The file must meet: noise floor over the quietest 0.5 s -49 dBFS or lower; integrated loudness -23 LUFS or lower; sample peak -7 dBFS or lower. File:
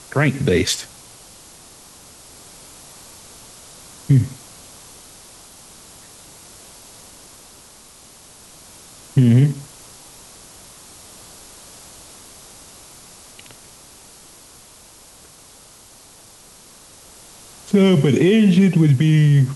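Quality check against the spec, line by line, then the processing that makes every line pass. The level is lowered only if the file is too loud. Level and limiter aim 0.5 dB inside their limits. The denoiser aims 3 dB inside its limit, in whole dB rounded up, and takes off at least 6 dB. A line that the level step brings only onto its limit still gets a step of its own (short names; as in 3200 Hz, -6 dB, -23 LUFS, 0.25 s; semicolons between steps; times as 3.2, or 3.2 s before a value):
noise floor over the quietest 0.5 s -46 dBFS: fail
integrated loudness -16.0 LUFS: fail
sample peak -5.0 dBFS: fail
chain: gain -7.5 dB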